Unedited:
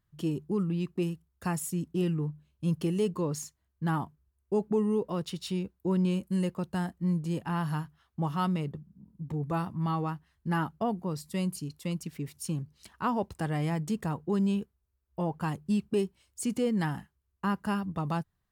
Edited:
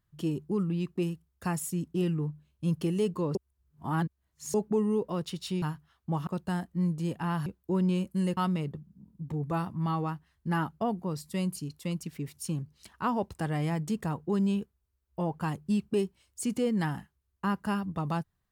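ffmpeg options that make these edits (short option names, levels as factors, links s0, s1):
-filter_complex "[0:a]asplit=7[s0][s1][s2][s3][s4][s5][s6];[s0]atrim=end=3.352[s7];[s1]atrim=start=3.348:end=4.542,asetpts=PTS-STARTPTS,areverse[s8];[s2]atrim=start=4.538:end=5.622[s9];[s3]atrim=start=7.718:end=8.372[s10];[s4]atrim=start=6.528:end=7.722[s11];[s5]atrim=start=5.618:end=6.532[s12];[s6]atrim=start=8.368[s13];[s7][s8]acrossfade=d=0.004:c1=hsin:c2=hsin[s14];[s14][s9]acrossfade=d=0.004:c1=hsin:c2=hsin[s15];[s15][s10]acrossfade=d=0.004:c1=hsin:c2=hsin[s16];[s16][s11]acrossfade=d=0.004:c1=hsin:c2=hsin[s17];[s17][s12]acrossfade=d=0.004:c1=hsin:c2=hsin[s18];[s18][s13]acrossfade=d=0.004:c1=hsin:c2=hsin"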